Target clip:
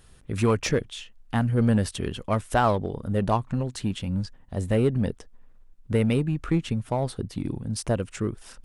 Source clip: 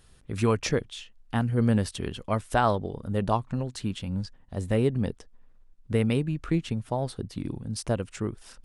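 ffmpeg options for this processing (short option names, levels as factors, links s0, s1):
-filter_complex "[0:a]equalizer=f=4500:w=1.5:g=-2.5,asplit=2[s0][s1];[s1]volume=20,asoftclip=hard,volume=0.0501,volume=0.501[s2];[s0][s2]amix=inputs=2:normalize=0"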